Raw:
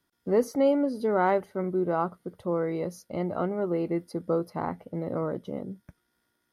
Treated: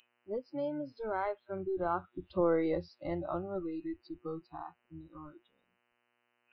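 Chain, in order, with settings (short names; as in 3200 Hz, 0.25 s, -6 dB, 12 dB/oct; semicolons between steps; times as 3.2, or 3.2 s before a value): octaver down 1 oct, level -5 dB; Doppler pass-by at 2.55, 14 m/s, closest 5.2 m; downsampling 11025 Hz; buzz 120 Hz, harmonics 25, -54 dBFS -1 dB/oct; in parallel at 0 dB: compressor, threshold -40 dBFS, peak gain reduction 15 dB; on the sum: spectral noise reduction 29 dB; bell 110 Hz -11.5 dB 1.1 oct; gain -1 dB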